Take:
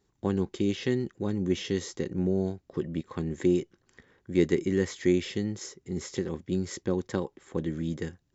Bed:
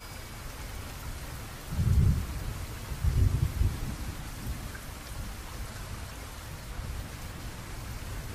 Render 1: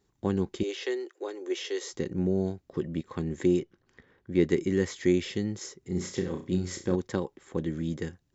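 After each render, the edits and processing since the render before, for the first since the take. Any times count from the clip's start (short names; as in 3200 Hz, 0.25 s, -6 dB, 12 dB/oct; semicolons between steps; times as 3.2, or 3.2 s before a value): 0.63–1.93 steep high-pass 350 Hz 48 dB/oct; 3.59–4.5 air absorption 110 m; 5.79–6.96 flutter echo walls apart 5.7 m, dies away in 0.31 s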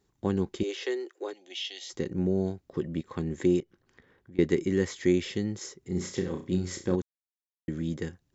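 1.33–1.9 EQ curve 180 Hz 0 dB, 430 Hz -25 dB, 720 Hz -1 dB, 1100 Hz -23 dB, 3100 Hz +6 dB, 6200 Hz -4 dB, 9200 Hz -11 dB; 3.6–4.39 compressor 3:1, threshold -50 dBFS; 7.02–7.68 mute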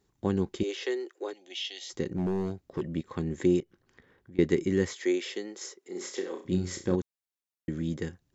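2.11–2.86 overloaded stage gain 24.5 dB; 4.93–6.45 HPF 340 Hz 24 dB/oct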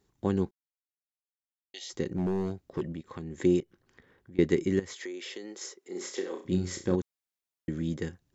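0.51–1.74 mute; 2.92–3.4 compressor 2:1, threshold -40 dBFS; 4.79–5.56 compressor, threshold -36 dBFS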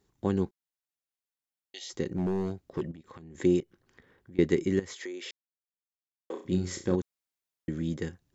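2.91–3.35 compressor 10:1, threshold -43 dBFS; 5.31–6.3 mute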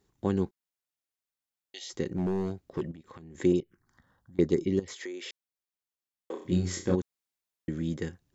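3.52–4.88 envelope phaser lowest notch 380 Hz, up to 3100 Hz, full sweep at -19.5 dBFS; 6.39–6.95 doubler 23 ms -3 dB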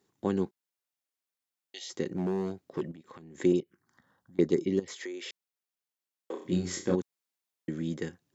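HPF 160 Hz 12 dB/oct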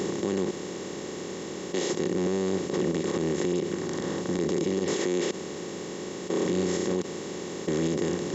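per-bin compression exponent 0.2; limiter -17.5 dBFS, peak gain reduction 9.5 dB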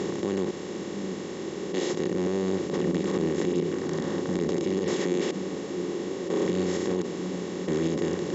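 air absorption 57 m; delay with a stepping band-pass 0.692 s, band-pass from 220 Hz, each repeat 0.7 oct, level -4 dB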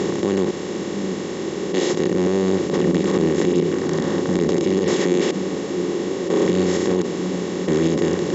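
gain +8 dB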